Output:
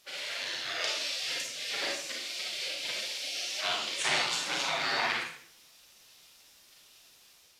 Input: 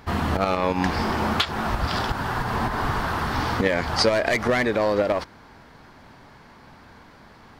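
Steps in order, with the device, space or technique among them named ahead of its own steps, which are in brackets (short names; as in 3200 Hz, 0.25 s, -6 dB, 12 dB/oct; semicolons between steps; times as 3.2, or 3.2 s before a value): spectral gate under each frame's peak -25 dB weak; filmed off a television (BPF 200–7800 Hz; bell 590 Hz +6 dB 0.38 oct; reverb RT60 0.60 s, pre-delay 32 ms, DRR -2.5 dB; white noise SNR 26 dB; AGC gain up to 4.5 dB; AAC 96 kbps 32000 Hz)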